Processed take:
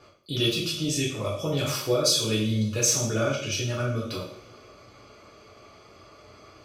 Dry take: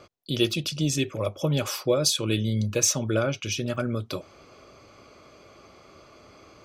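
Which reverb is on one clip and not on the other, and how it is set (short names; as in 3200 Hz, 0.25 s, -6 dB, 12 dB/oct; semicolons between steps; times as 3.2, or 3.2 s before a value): two-slope reverb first 0.56 s, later 3 s, from -26 dB, DRR -6.5 dB; gain -6.5 dB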